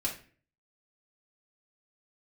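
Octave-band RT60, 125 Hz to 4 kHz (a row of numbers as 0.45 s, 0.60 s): 0.65 s, 0.55 s, 0.45 s, 0.35 s, 0.45 s, 0.35 s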